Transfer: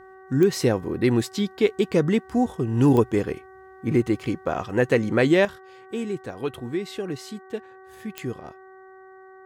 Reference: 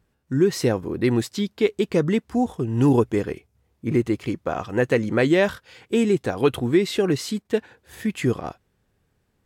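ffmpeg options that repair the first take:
ffmpeg -i in.wav -af "adeclick=threshold=4,bandreject=frequency=379.2:width_type=h:width=4,bandreject=frequency=758.4:width_type=h:width=4,bandreject=frequency=1137.6:width_type=h:width=4,bandreject=frequency=1516.8:width_type=h:width=4,bandreject=frequency=1896:width_type=h:width=4,asetnsamples=nb_out_samples=441:pad=0,asendcmd='5.45 volume volume 9.5dB',volume=0dB" out.wav

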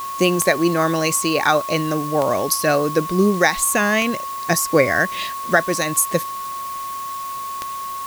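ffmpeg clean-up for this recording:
ffmpeg -i in.wav -af "adeclick=threshold=4,bandreject=frequency=1100:width=30,afwtdn=0.013" out.wav

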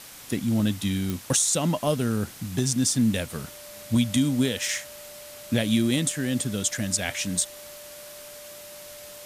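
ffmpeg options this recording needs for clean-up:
ffmpeg -i in.wav -af "adeclick=threshold=4,bandreject=frequency=590:width=30,afwtdn=0.0071" out.wav

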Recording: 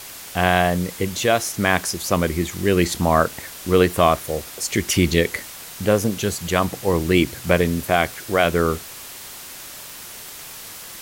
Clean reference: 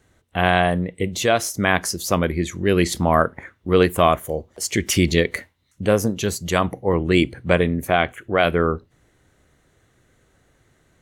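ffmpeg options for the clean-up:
ffmpeg -i in.wav -af "adeclick=threshold=4,afwtdn=0.016" out.wav

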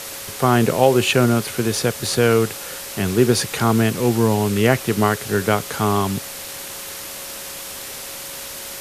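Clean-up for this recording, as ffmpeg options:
ffmpeg -i in.wav -af "bandreject=frequency=550:width=30,afwtdn=0.028" out.wav

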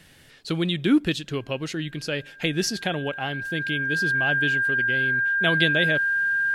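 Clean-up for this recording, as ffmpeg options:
ffmpeg -i in.wav -af "bandreject=frequency=1600:width=30" out.wav

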